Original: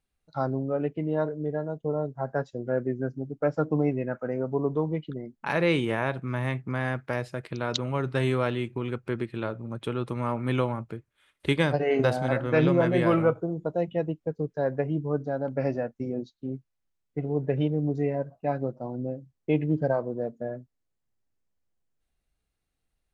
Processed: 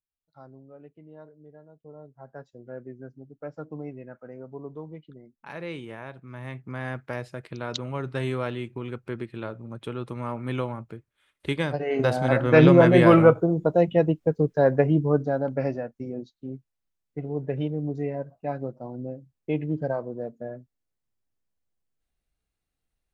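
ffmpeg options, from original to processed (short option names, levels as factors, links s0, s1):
-af "volume=2.37,afade=t=in:st=1.72:d=0.93:silence=0.398107,afade=t=in:st=6.27:d=0.68:silence=0.354813,afade=t=in:st=11.89:d=0.75:silence=0.298538,afade=t=out:st=14.93:d=0.89:silence=0.316228"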